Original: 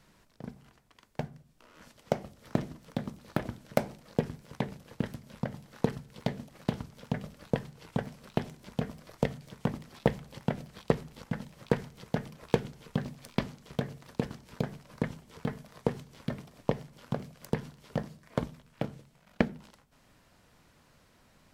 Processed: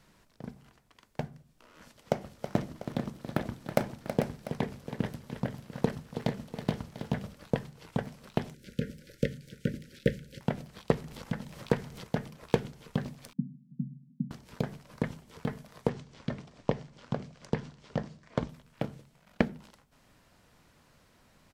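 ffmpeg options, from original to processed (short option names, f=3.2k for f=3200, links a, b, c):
-filter_complex "[0:a]asplit=3[a][b][c];[a]afade=t=out:st=2.2:d=0.02[d];[b]aecho=1:1:324|444|695:0.335|0.398|0.178,afade=t=in:st=2.2:d=0.02,afade=t=out:st=7.33:d=0.02[e];[c]afade=t=in:st=7.33:d=0.02[f];[d][e][f]amix=inputs=3:normalize=0,asettb=1/sr,asplit=3[g][h][i];[g]atrim=end=8.544[j];[h]atrim=start=8.54:end=10.41,asetpts=PTS-STARTPTS,afade=t=in:d=0.004:c=qsin,afade=t=out:st=1.866:d=0.004:c=qsin,asuperstop=centerf=900:order=20:qfactor=1.1[k];[i]atrim=start=10.406[l];[j][k]acrossfade=d=0.004:c1=hsin:c2=qsin[m];[m][l]acrossfade=d=0.004:c1=qsin:c2=hsin,asettb=1/sr,asplit=3[n][o][p];[n]atrim=end=11.044[q];[o]atrim=start=11.04:end=12.07,asetpts=PTS-STARTPTS,afade=t=in:d=0.004:c=qsin,afade=t=out:st=1.026:d=0.004:c=qsin,acompressor=mode=upward:threshold=-36dB:ratio=2.5:attack=3.2:release=140:knee=2.83:detection=peak[r];[p]atrim=start=12.066[s];[q][r]acrossfade=d=0.004:c1=hsin:c2=qsin[t];[t][s]acrossfade=d=0.004:c1=qsin:c2=hsin,asettb=1/sr,asplit=3[u][v][w];[u]atrim=end=13.334[x];[v]atrim=start=13.33:end=14.31,asetpts=PTS-STARTPTS,afade=t=in:d=0.004:c=qsin,afade=t=out:st=0.976:d=0.004:c=qsin,asuperpass=centerf=190:order=12:qfactor=1.4[y];[w]atrim=start=14.306[z];[x][y]acrossfade=d=0.004:c1=hsin:c2=qsin[aa];[aa][z]acrossfade=d=0.004:c1=qsin:c2=hsin,asettb=1/sr,asplit=3[ab][ac][ad];[ab]atrim=end=15.894[ae];[ac]atrim=start=15.89:end=18.49,asetpts=PTS-STARTPTS,afade=t=in:d=0.004:c=qsin,afade=t=out:st=2.596:d=0.004:c=qsin,lowpass=f=7.3k:w=0.5412,lowpass=f=7.3k:w=1.3066[af];[ad]atrim=start=18.486[ag];[ae][af]acrossfade=d=0.004:c1=hsin:c2=qsin[ah];[ah][ag]acrossfade=d=0.004:c1=qsin:c2=hsin"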